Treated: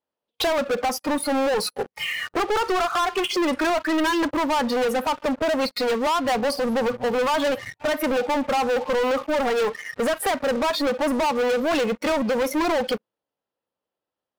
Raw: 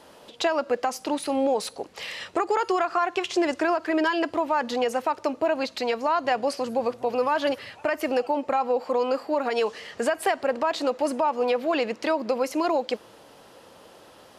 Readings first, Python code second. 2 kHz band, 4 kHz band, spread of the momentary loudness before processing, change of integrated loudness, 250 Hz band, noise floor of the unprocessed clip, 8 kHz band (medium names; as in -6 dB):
+4.0 dB, +6.0 dB, 5 LU, +2.5 dB, +4.0 dB, -51 dBFS, +6.0 dB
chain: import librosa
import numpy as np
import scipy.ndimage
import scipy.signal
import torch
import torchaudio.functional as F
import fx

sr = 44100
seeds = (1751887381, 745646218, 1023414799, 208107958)

y = fx.noise_reduce_blind(x, sr, reduce_db=22)
y = fx.peak_eq(y, sr, hz=7400.0, db=-12.0, octaves=0.65)
y = fx.leveller(y, sr, passes=5)
y = y * librosa.db_to_amplitude(-6.0)